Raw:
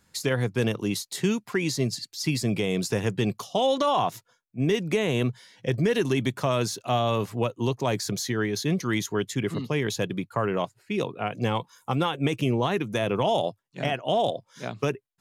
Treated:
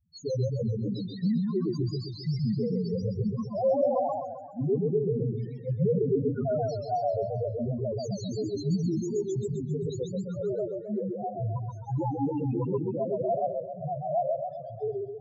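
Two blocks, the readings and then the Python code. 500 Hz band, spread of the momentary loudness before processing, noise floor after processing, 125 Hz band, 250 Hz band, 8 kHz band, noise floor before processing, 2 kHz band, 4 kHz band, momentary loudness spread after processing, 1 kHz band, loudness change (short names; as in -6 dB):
-1.5 dB, 6 LU, -41 dBFS, -1.5 dB, -3.0 dB, -16.5 dB, -70 dBFS, under -25 dB, -16.5 dB, 7 LU, -5.0 dB, -3.0 dB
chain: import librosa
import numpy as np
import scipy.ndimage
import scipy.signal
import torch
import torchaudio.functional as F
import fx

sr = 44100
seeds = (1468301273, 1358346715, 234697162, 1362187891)

y = fx.spec_topn(x, sr, count=1)
y = fx.echo_warbled(y, sr, ms=131, feedback_pct=52, rate_hz=2.8, cents=150, wet_db=-3)
y = y * librosa.db_to_amplitude(4.0)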